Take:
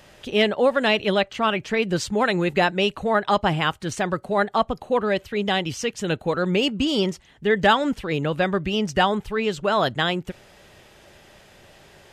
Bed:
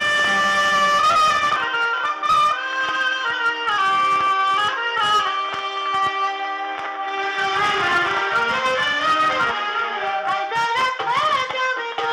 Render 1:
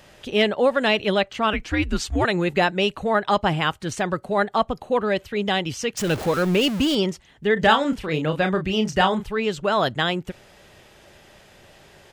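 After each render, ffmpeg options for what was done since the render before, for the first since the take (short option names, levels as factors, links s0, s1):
-filter_complex "[0:a]asettb=1/sr,asplit=3[s0][s1][s2];[s0]atrim=end=1.534[s3];[s1]atrim=start=1.53:end=2.25,asetpts=PTS-STARTPTS,afade=t=in:d=0.004:c=qsin,afade=t=out:st=0.716:d=0.004:c=qsin,afreqshift=-140[s4];[s2]atrim=start=2.246[s5];[s3][s4]acrossfade=d=0.004:c1=hsin:c2=qsin[s6];[s6][s5]acrossfade=d=0.004:c1=qsin:c2=hsin,asettb=1/sr,asplit=3[s7][s8][s9];[s7]atrim=end=5.974[s10];[s8]atrim=start=5.97:end=6.95,asetpts=PTS-STARTPTS,afade=t=in:d=0.004:c=qsin,afade=t=out:st=0.976:d=0.004:c=qsin,aeval=exprs='val(0)+0.5*0.0473*sgn(val(0))':c=same[s11];[s9]atrim=start=6.946[s12];[s10][s11]acrossfade=d=0.004:c1=hsin:c2=qsin[s13];[s13][s12]acrossfade=d=0.004:c1=qsin:c2=hsin,asplit=3[s14][s15][s16];[s14]afade=t=out:st=7.56:d=0.02[s17];[s15]asplit=2[s18][s19];[s19]adelay=32,volume=0.422[s20];[s18][s20]amix=inputs=2:normalize=0,afade=t=in:st=7.56:d=0.02,afade=t=out:st=9.25:d=0.02[s21];[s16]afade=t=in:st=9.25:d=0.02[s22];[s17][s21][s22]amix=inputs=3:normalize=0"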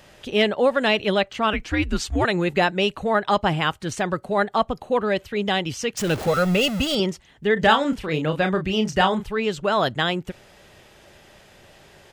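-filter_complex "[0:a]asettb=1/sr,asplit=3[s0][s1][s2];[s0]atrim=end=6.274[s3];[s1]atrim=start=6.27:end=7,asetpts=PTS-STARTPTS,afade=t=in:d=0.004:c=qsin,afade=t=out:st=0.726:d=0.004:c=qsin,aecho=1:1:1.5:0.65,atrim=end_sample=32193[s4];[s2]atrim=start=6.996[s5];[s3][s4]acrossfade=d=0.004:c1=hsin:c2=qsin[s6];[s6][s5]acrossfade=d=0.004:c1=qsin:c2=hsin"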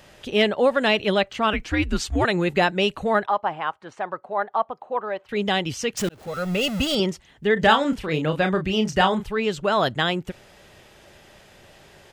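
-filter_complex "[0:a]asettb=1/sr,asplit=3[s0][s1][s2];[s0]atrim=end=3.264[s3];[s1]atrim=start=3.26:end=5.29,asetpts=PTS-STARTPTS,afade=t=in:d=0.004:c=qsin,afade=t=out:st=2.026:d=0.004:c=qsin,bandpass=f=910:t=q:w=1.5[s4];[s2]atrim=start=5.286[s5];[s3][s4]acrossfade=d=0.004:c1=hsin:c2=qsin[s6];[s6][s5]acrossfade=d=0.004:c1=qsin:c2=hsin,asplit=2[s7][s8];[s7]atrim=end=6.09,asetpts=PTS-STARTPTS,afade=t=out:st=6.086:d=0.004:c=hsin[s9];[s8]atrim=start=6.09,asetpts=PTS-STARTPTS,afade=t=in:d=0.75[s10];[s9][s10]concat=n=2:v=0:a=1"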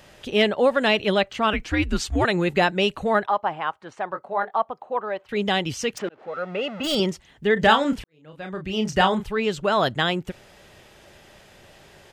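-filter_complex "[0:a]asettb=1/sr,asplit=3[s0][s1][s2];[s0]atrim=end=4.094[s3];[s1]atrim=start=4.09:end=4.56,asetpts=PTS-STARTPTS,afade=t=in:d=0.004:c=qsin,afade=t=out:st=0.466:d=0.004:c=qsin,asplit=2[s4][s5];[s5]adelay=21,volume=0.447[s6];[s4][s6]amix=inputs=2:normalize=0,atrim=end_sample=20727[s7];[s2]atrim=start=4.556[s8];[s3][s7]acrossfade=d=0.004:c1=hsin:c2=qsin[s9];[s9][s8]acrossfade=d=0.004:c1=qsin:c2=hsin,asplit=3[s10][s11][s12];[s10]afade=t=out:st=5.97:d=0.02[s13];[s11]highpass=340,lowpass=2000,afade=t=in:st=5.97:d=0.02,afade=t=out:st=6.83:d=0.02[s14];[s12]afade=t=in:st=6.83:d=0.02[s15];[s13][s14][s15]amix=inputs=3:normalize=0,asplit=2[s16][s17];[s16]atrim=end=8.04,asetpts=PTS-STARTPTS,afade=t=out:st=8.036:d=0.004:c=hsin[s18];[s17]atrim=start=8.04,asetpts=PTS-STARTPTS,afade=t=in:d=0.88:c=qua[s19];[s18][s19]concat=n=2:v=0:a=1"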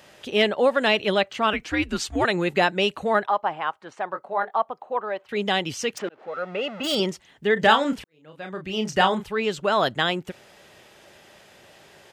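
-af "highpass=f=210:p=1"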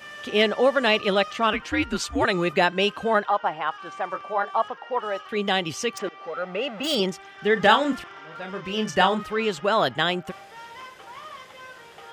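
-filter_complex "[1:a]volume=0.0794[s0];[0:a][s0]amix=inputs=2:normalize=0"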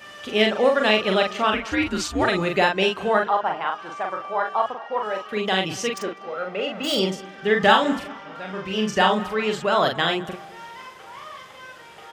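-filter_complex "[0:a]asplit=2[s0][s1];[s1]adelay=42,volume=0.631[s2];[s0][s2]amix=inputs=2:normalize=0,asplit=2[s3][s4];[s4]adelay=200,lowpass=f=2200:p=1,volume=0.126,asplit=2[s5][s6];[s6]adelay=200,lowpass=f=2200:p=1,volume=0.47,asplit=2[s7][s8];[s8]adelay=200,lowpass=f=2200:p=1,volume=0.47,asplit=2[s9][s10];[s10]adelay=200,lowpass=f=2200:p=1,volume=0.47[s11];[s3][s5][s7][s9][s11]amix=inputs=5:normalize=0"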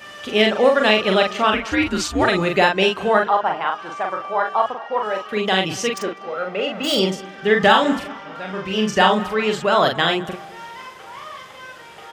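-af "volume=1.5,alimiter=limit=0.891:level=0:latency=1"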